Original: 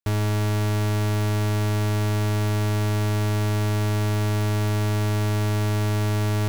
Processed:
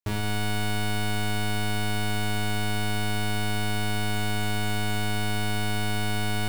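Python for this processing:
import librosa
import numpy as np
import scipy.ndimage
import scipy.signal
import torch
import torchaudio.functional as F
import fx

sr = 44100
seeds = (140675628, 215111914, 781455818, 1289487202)

y = fx.room_flutter(x, sr, wall_m=4.2, rt60_s=0.71)
y = y * 10.0 ** (-4.0 / 20.0)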